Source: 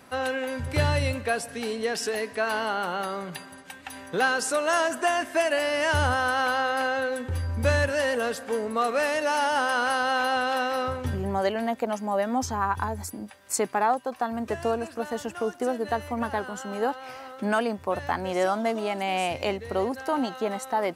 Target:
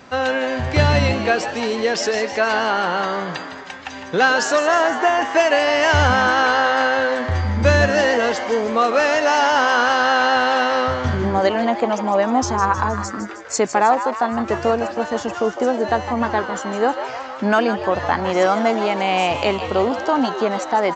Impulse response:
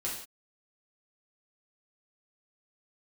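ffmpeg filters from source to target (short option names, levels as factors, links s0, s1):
-filter_complex "[0:a]asettb=1/sr,asplit=3[s0][s1][s2];[s0]atrim=end=4.674[s3];[s1]atrim=start=4.67:end=5.22,asetpts=PTS-STARTPTS,afade=t=in:d=0.004:c=qsin,afade=t=out:st=0.546:d=0.004:c=qsin,highshelf=f=3200:g=-10.5[s4];[s2]atrim=start=5.216[s5];[s3][s4]acrossfade=d=0.004:c1=hsin:c2=qsin[s6];[s6][s5]acrossfade=d=0.004:c1=qsin:c2=hsin,asplit=8[s7][s8][s9][s10][s11][s12][s13][s14];[s8]adelay=157,afreqshift=120,volume=0.299[s15];[s9]adelay=314,afreqshift=240,volume=0.182[s16];[s10]adelay=471,afreqshift=360,volume=0.111[s17];[s11]adelay=628,afreqshift=480,volume=0.0676[s18];[s12]adelay=785,afreqshift=600,volume=0.0412[s19];[s13]adelay=942,afreqshift=720,volume=0.0251[s20];[s14]adelay=1099,afreqshift=840,volume=0.0153[s21];[s7][s15][s16][s17][s18][s19][s20][s21]amix=inputs=8:normalize=0,aresample=16000,aresample=44100,volume=2.51"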